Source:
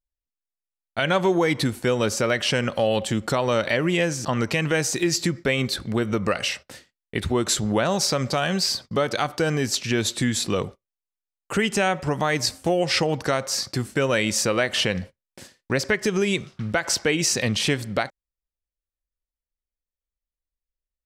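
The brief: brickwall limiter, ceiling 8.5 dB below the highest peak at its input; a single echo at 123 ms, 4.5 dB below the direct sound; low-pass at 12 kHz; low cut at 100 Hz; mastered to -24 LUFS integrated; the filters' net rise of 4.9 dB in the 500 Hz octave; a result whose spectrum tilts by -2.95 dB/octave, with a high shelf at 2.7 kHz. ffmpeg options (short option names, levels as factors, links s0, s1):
-af "highpass=100,lowpass=12000,equalizer=f=500:t=o:g=5.5,highshelf=f=2700:g=8.5,alimiter=limit=0.282:level=0:latency=1,aecho=1:1:123:0.596,volume=0.668"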